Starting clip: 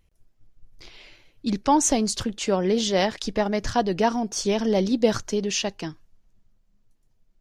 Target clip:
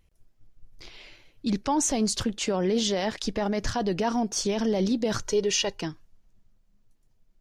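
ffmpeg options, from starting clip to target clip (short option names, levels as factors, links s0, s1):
-filter_complex "[0:a]alimiter=limit=0.141:level=0:latency=1:release=18,asettb=1/sr,asplit=3[s0][s1][s2];[s0]atrim=end=5.214[s3];[s1]atrim=start=5.21:end=5.81,asetpts=PTS-STARTPTS,afade=t=in:d=0.004:c=qsin,afade=t=out:st=0.596:d=0.004:c=qsin,aecho=1:1:2.1:0.69,atrim=end_sample=26460[s4];[s2]atrim=start=5.806[s5];[s3][s4]acrossfade=d=0.004:c1=hsin:c2=qsin[s6];[s6][s5]acrossfade=d=0.004:c1=qsin:c2=hsin"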